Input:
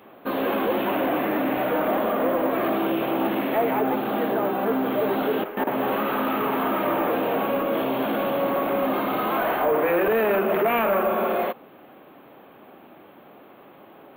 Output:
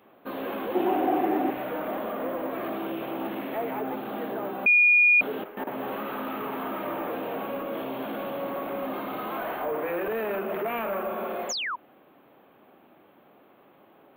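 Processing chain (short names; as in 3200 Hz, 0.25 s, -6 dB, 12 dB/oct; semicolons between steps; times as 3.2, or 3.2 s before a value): 0.75–1.51 small resonant body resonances 360/750 Hz, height 15 dB; 4.66–5.21 bleep 2440 Hz -6.5 dBFS; 11.49–11.76 painted sound fall 890–7400 Hz -22 dBFS; gain -8.5 dB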